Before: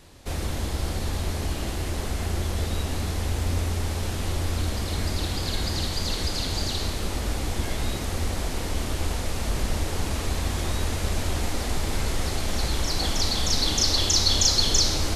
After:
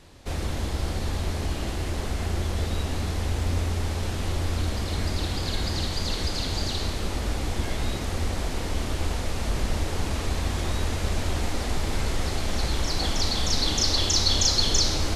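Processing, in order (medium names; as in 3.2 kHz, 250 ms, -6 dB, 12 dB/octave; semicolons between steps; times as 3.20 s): treble shelf 10 kHz -9.5 dB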